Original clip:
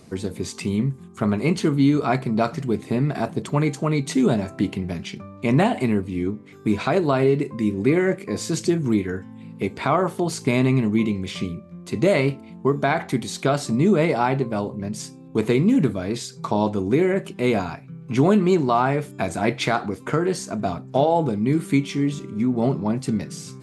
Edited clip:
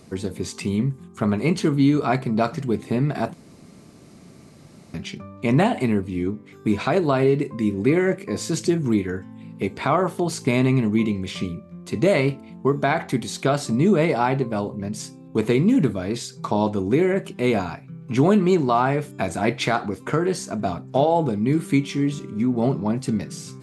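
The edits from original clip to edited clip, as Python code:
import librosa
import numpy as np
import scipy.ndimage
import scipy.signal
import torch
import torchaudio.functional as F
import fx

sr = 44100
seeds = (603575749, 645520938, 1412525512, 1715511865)

y = fx.edit(x, sr, fx.room_tone_fill(start_s=3.34, length_s=1.6), tone=tone)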